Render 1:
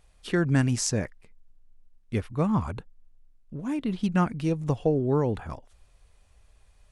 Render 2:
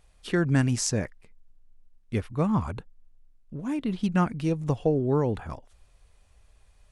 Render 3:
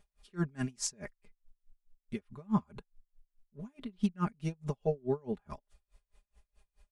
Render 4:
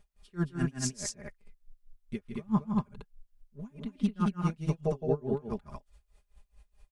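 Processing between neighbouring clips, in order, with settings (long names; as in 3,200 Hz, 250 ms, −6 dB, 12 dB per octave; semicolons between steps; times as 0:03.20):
no processing that can be heard
comb filter 4.9 ms, depth 88%; tremolo with a sine in dB 4.7 Hz, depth 32 dB; level −6.5 dB
low-shelf EQ 140 Hz +5 dB; on a send: loudspeakers that aren't time-aligned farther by 56 metres −8 dB, 77 metres −2 dB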